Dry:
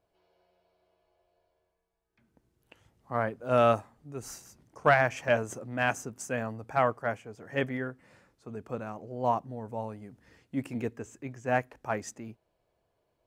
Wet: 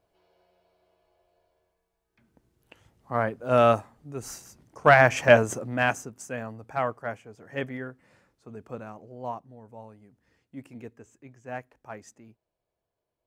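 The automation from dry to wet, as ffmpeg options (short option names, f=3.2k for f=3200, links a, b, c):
-af "volume=10.5dB,afade=t=in:st=4.83:d=0.37:silence=0.446684,afade=t=out:st=5.2:d=0.92:silence=0.237137,afade=t=out:st=8.84:d=0.57:silence=0.446684"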